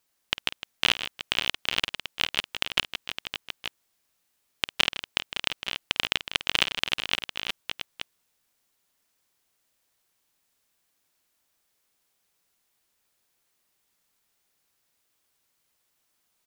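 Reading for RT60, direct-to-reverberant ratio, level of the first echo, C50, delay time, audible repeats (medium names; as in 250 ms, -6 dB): no reverb, no reverb, -14.5 dB, no reverb, 51 ms, 4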